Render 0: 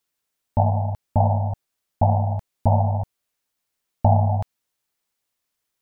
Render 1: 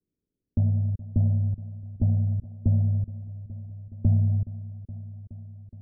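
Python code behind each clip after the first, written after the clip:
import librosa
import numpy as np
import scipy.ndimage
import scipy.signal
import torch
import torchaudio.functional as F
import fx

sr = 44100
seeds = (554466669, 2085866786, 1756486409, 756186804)

y = scipy.signal.sosfilt(scipy.signal.cheby2(4, 50, 970.0, 'lowpass', fs=sr, output='sos'), x)
y = fx.echo_feedback(y, sr, ms=420, feedback_pct=57, wet_db=-20.5)
y = fx.band_squash(y, sr, depth_pct=40)
y = y * 10.0 ** (-1.5 / 20.0)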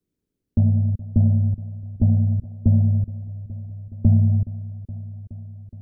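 y = fx.dynamic_eq(x, sr, hz=220.0, q=7.9, threshold_db=-43.0, ratio=4.0, max_db=5)
y = y * 10.0 ** (5.0 / 20.0)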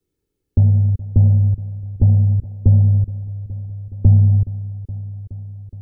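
y = x + 0.58 * np.pad(x, (int(2.3 * sr / 1000.0), 0))[:len(x)]
y = y * 10.0 ** (3.5 / 20.0)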